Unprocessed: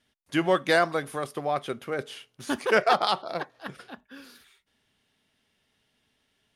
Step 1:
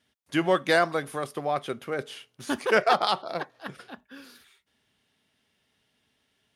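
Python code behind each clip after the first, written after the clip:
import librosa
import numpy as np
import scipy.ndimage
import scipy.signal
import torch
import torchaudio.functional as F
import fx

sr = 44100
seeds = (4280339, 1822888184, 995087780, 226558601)

y = scipy.signal.sosfilt(scipy.signal.butter(2, 54.0, 'highpass', fs=sr, output='sos'), x)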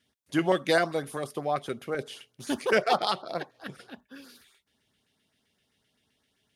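y = fx.filter_lfo_notch(x, sr, shape='saw_up', hz=7.7, low_hz=660.0, high_hz=3400.0, q=1.1)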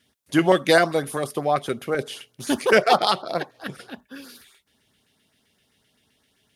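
y = fx.peak_eq(x, sr, hz=12000.0, db=3.5, octaves=0.72)
y = F.gain(torch.from_numpy(y), 7.0).numpy()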